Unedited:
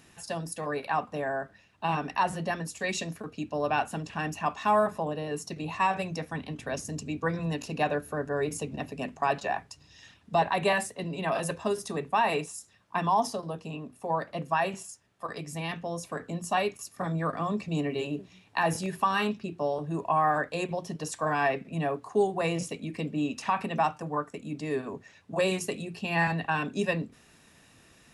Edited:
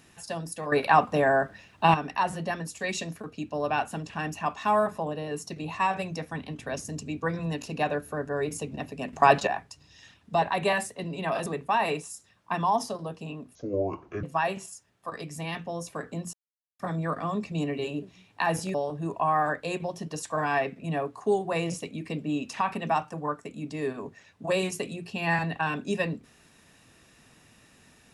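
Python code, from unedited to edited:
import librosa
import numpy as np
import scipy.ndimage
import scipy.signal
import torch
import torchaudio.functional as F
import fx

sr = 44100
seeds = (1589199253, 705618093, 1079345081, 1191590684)

y = fx.edit(x, sr, fx.clip_gain(start_s=0.72, length_s=1.22, db=9.0),
    fx.clip_gain(start_s=9.13, length_s=0.34, db=8.5),
    fx.cut(start_s=11.46, length_s=0.44),
    fx.speed_span(start_s=13.99, length_s=0.41, speed=0.6),
    fx.silence(start_s=16.5, length_s=0.46),
    fx.cut(start_s=18.91, length_s=0.72), tone=tone)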